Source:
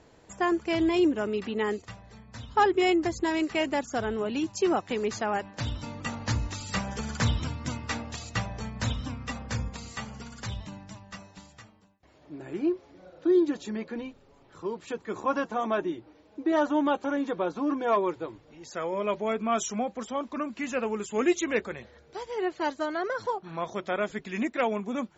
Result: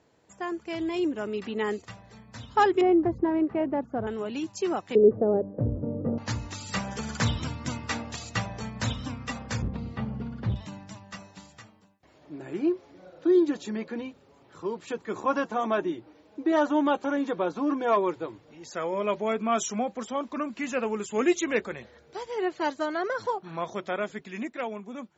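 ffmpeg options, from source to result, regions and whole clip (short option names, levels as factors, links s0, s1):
-filter_complex "[0:a]asettb=1/sr,asplit=3[s0][s1][s2];[s0]atrim=end=2.814[s3];[s1]atrim=start=2.81:end=4.07,asetpts=PTS-STARTPTS,afade=t=in:d=0.004:c=qsin,afade=t=out:st=1.256:d=0.004:c=qsin,lowpass=1000,lowshelf=f=360:g=5.5[s4];[s2]atrim=start=4.066[s5];[s3][s4]acrossfade=d=0.004:c1=hsin:c2=qsin[s6];[s6][s5]acrossfade=d=0.004:c1=qsin:c2=hsin,asettb=1/sr,asplit=3[s7][s8][s9];[s7]atrim=end=4.954[s10];[s8]atrim=start=4.95:end=6.18,asetpts=PTS-STARTPTS,afade=t=in:d=0.004:c=qsin,afade=t=out:st=1.226:d=0.004:c=qsin,lowpass=f=1000:w=0.5412,lowpass=f=1000:w=1.3066,lowshelf=f=670:t=q:w=3:g=10[s11];[s9]atrim=start=6.176[s12];[s10][s11]acrossfade=d=0.004:c1=hsin:c2=qsin[s13];[s13][s12]acrossfade=d=0.004:c1=qsin:c2=hsin,asettb=1/sr,asplit=3[s14][s15][s16];[s14]atrim=end=9.624[s17];[s15]atrim=start=9.62:end=10.56,asetpts=PTS-STARTPTS,afade=t=in:d=0.004:c=qsin,afade=t=out:st=0.936:d=0.004:c=qsin,lowpass=f=4000:w=0.5412,lowpass=f=4000:w=1.3066,tiltshelf=f=720:g=10,asoftclip=type=hard:threshold=0.0891[s18];[s16]atrim=start=10.556[s19];[s17][s18]acrossfade=d=0.004:c1=hsin:c2=qsin[s20];[s20][s19]acrossfade=d=0.004:c1=qsin:c2=hsin,highpass=87,dynaudnorm=f=200:g=13:m=2.82,volume=0.422"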